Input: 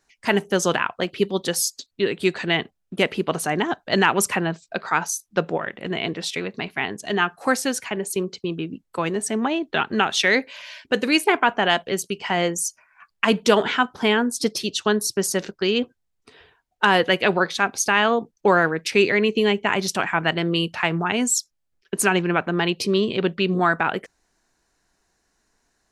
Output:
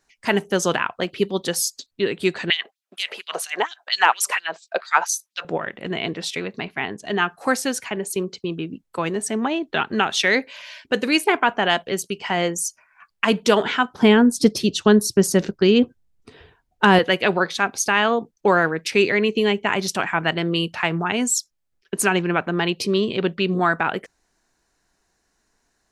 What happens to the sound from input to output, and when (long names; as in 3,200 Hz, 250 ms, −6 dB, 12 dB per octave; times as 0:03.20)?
0:02.50–0:05.45: auto-filter high-pass sine 4.3 Hz 530–4,300 Hz
0:06.62–0:07.18: low-pass filter 3,800 Hz 6 dB per octave
0:13.99–0:16.99: low-shelf EQ 380 Hz +12 dB